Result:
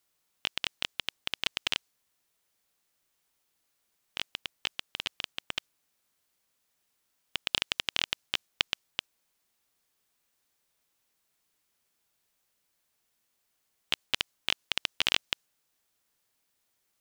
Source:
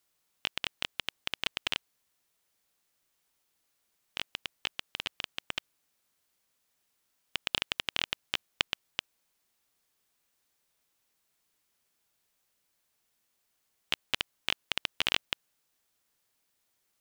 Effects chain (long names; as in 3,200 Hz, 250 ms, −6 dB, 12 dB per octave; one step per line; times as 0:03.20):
dynamic equaliser 5,900 Hz, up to +5 dB, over −46 dBFS, Q 0.77